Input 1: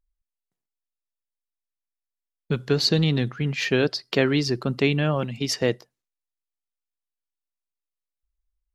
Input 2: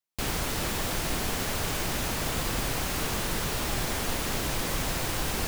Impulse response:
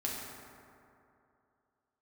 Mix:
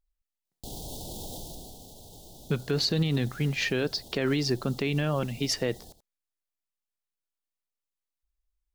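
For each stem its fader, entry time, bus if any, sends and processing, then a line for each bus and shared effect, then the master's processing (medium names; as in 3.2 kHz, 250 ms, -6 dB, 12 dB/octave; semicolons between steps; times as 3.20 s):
-2.0 dB, 0.00 s, no send, no echo send, none
1.37 s -2.5 dB -> 1.86 s -12 dB, 0.45 s, no send, echo send -14 dB, elliptic band-stop 800–3500 Hz, stop band 40 dB; peak limiter -27.5 dBFS, peak gain reduction 9 dB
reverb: none
echo: delay 82 ms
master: peak limiter -16.5 dBFS, peak gain reduction 8.5 dB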